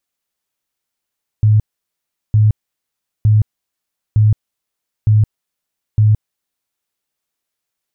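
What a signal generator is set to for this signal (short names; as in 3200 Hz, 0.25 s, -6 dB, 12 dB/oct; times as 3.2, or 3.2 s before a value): tone bursts 107 Hz, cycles 18, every 0.91 s, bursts 6, -7 dBFS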